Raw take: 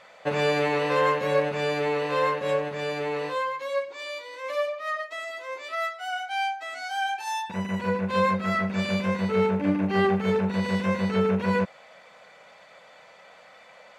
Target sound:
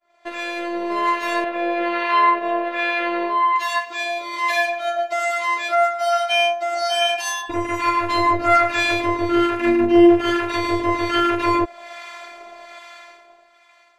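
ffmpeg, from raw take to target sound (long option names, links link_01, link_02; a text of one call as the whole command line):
ffmpeg -i in.wav -filter_complex "[0:a]acrossover=split=850[link_01][link_02];[link_01]aeval=exprs='val(0)*(1-0.7/2+0.7/2*cos(2*PI*1.2*n/s))':channel_layout=same[link_03];[link_02]aeval=exprs='val(0)*(1-0.7/2-0.7/2*cos(2*PI*1.2*n/s))':channel_layout=same[link_04];[link_03][link_04]amix=inputs=2:normalize=0,asplit=2[link_05][link_06];[link_06]acompressor=threshold=-36dB:ratio=6,volume=0dB[link_07];[link_05][link_07]amix=inputs=2:normalize=0,asettb=1/sr,asplit=3[link_08][link_09][link_10];[link_08]atrim=end=1.444[link_11];[link_09]atrim=start=1.44:end=3.56,asetpts=PTS-STARTPTS,afade=type=in:duration=0.004:curve=qsin,afade=type=out:start_time=2.116:duration=0.004:curve=qsin,acrossover=split=440 3600:gain=0.2 1 0.0794[link_12][link_13][link_14];[link_12][link_13][link_14]amix=inputs=3:normalize=0[link_15];[link_10]atrim=start=3.556[link_16];[link_11][link_15]acrossfade=duration=0.004:curve1=hsin:curve2=qsin[link_17];[link_17][link_16]acrossfade=duration=0.004:curve1=qsin:curve2=hsin,asettb=1/sr,asplit=3[link_18][link_19][link_20];[link_18]atrim=end=7.964[link_21];[link_19]atrim=start=7.96:end=8.73,asetpts=PTS-STARTPTS,afade=type=in:duration=0.004:curve=qsin,afade=type=out:start_time=0.766:duration=0.004:curve=qsin,asplit=2[link_22][link_23];[link_23]adelay=12,volume=-4.5dB[link_24];[link_22][link_24]amix=inputs=2:normalize=0,atrim=end_sample=33957[link_25];[link_20]atrim=start=8.726[link_26];[link_21][link_25]acrossfade=duration=0.004:curve1=hsin:curve2=qsin[link_27];[link_27][link_26]acrossfade=duration=0.004:curve1=qsin:curve2=hsin,afftfilt=real='hypot(re,im)*cos(PI*b)':imag='0':win_size=512:overlap=0.75,dynaudnorm=framelen=120:gausssize=21:maxgain=14dB,agate=range=-33dB:threshold=-44dB:ratio=3:detection=peak,volume=1.5dB" out.wav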